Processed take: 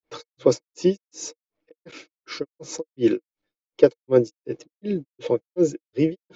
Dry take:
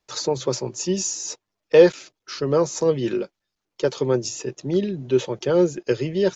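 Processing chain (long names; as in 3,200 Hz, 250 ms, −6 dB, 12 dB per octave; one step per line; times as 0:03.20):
granular cloud 239 ms, grains 2.7 per second, spray 33 ms, pitch spread up and down by 0 semitones
low-pass that shuts in the quiet parts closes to 3,000 Hz, open at −24 dBFS
hollow resonant body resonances 310/470/2,200 Hz, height 12 dB, ringing for 45 ms
level +1 dB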